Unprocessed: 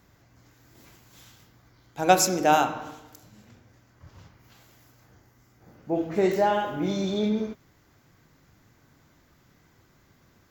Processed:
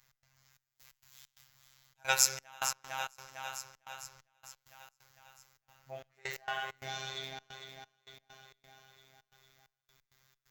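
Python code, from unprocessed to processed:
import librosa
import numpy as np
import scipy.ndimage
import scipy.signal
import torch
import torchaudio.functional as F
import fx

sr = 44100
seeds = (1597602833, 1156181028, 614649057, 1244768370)

y = fx.dynamic_eq(x, sr, hz=1800.0, q=0.94, threshold_db=-41.0, ratio=4.0, max_db=6)
y = fx.echo_feedback(y, sr, ms=453, feedback_pct=59, wet_db=-9)
y = fx.robotise(y, sr, hz=133.0)
y = fx.step_gate(y, sr, bpm=132, pattern='x.xxx..x.xx.xxxx', floor_db=-24.0, edge_ms=4.5)
y = fx.tone_stack(y, sr, knobs='10-0-10')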